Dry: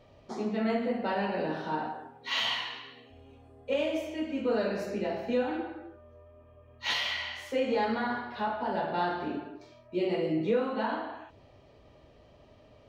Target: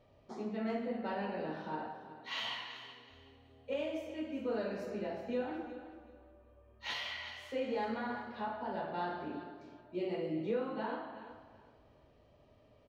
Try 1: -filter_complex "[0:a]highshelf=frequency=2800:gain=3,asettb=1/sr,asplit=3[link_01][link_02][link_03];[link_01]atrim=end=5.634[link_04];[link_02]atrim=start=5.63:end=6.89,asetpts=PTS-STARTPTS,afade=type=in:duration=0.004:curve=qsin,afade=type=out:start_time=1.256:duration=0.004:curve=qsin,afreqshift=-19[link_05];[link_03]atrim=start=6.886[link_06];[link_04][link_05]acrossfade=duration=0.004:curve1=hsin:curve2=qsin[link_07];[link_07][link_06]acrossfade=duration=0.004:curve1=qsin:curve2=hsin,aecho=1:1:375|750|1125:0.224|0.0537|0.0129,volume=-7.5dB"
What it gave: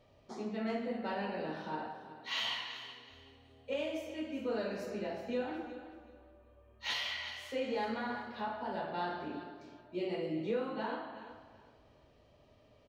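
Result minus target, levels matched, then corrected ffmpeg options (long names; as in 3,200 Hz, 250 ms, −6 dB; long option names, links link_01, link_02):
4,000 Hz band +3.0 dB
-filter_complex "[0:a]highshelf=frequency=2800:gain=-4,asettb=1/sr,asplit=3[link_01][link_02][link_03];[link_01]atrim=end=5.634[link_04];[link_02]atrim=start=5.63:end=6.89,asetpts=PTS-STARTPTS,afade=type=in:duration=0.004:curve=qsin,afade=type=out:start_time=1.256:duration=0.004:curve=qsin,afreqshift=-19[link_05];[link_03]atrim=start=6.886[link_06];[link_04][link_05]acrossfade=duration=0.004:curve1=hsin:curve2=qsin[link_07];[link_07][link_06]acrossfade=duration=0.004:curve1=qsin:curve2=hsin,aecho=1:1:375|750|1125:0.224|0.0537|0.0129,volume=-7.5dB"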